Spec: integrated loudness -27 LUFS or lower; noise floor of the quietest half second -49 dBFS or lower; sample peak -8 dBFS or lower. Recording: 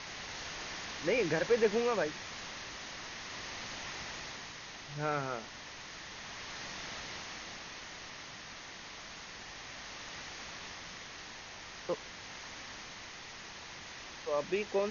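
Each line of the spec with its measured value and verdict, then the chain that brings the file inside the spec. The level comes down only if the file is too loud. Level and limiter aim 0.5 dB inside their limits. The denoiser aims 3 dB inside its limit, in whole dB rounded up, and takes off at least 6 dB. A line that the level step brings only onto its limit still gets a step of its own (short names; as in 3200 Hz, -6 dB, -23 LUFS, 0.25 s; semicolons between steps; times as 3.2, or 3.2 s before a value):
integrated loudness -38.5 LUFS: OK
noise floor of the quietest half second -48 dBFS: fail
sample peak -17.0 dBFS: OK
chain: denoiser 6 dB, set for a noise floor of -48 dBFS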